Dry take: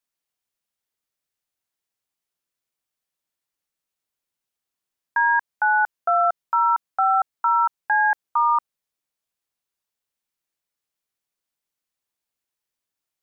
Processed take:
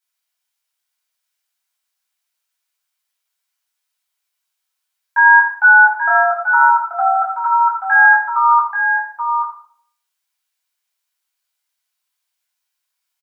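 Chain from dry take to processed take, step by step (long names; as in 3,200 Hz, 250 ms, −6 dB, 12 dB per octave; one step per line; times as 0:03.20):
high-pass filter 570 Hz 24 dB per octave
tilt shelving filter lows −8 dB, about 730 Hz
on a send: single-tap delay 833 ms −7 dB
on the sum: rectangular room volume 800 cubic metres, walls furnished, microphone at 7.8 metres
level −7 dB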